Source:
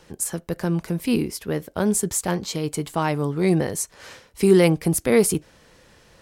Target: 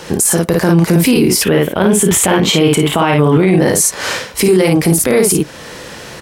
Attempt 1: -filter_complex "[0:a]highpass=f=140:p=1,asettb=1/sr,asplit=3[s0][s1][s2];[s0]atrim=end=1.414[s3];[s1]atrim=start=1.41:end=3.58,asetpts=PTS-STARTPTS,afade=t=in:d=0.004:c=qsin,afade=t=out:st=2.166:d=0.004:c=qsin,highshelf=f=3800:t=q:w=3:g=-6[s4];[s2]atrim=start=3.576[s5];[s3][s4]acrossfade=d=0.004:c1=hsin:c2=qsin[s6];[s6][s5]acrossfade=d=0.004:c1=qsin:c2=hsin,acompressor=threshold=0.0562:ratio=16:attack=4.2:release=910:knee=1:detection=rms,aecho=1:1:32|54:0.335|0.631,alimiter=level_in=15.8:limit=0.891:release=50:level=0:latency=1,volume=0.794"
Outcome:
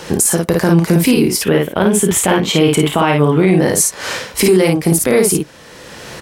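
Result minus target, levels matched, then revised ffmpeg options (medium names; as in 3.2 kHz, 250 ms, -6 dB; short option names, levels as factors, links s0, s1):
compression: peak gain reduction +8 dB
-filter_complex "[0:a]highpass=f=140:p=1,asettb=1/sr,asplit=3[s0][s1][s2];[s0]atrim=end=1.414[s3];[s1]atrim=start=1.41:end=3.58,asetpts=PTS-STARTPTS,afade=t=in:d=0.004:c=qsin,afade=t=out:st=2.166:d=0.004:c=qsin,highshelf=f=3800:t=q:w=3:g=-6[s4];[s2]atrim=start=3.576[s5];[s3][s4]acrossfade=d=0.004:c1=hsin:c2=qsin[s6];[s6][s5]acrossfade=d=0.004:c1=qsin:c2=hsin,acompressor=threshold=0.15:ratio=16:attack=4.2:release=910:knee=1:detection=rms,aecho=1:1:32|54:0.335|0.631,alimiter=level_in=15.8:limit=0.891:release=50:level=0:latency=1,volume=0.794"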